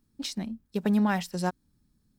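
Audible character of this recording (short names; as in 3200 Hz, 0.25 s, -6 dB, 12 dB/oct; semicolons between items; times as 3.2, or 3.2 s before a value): noise floor -72 dBFS; spectral tilt -5.5 dB/oct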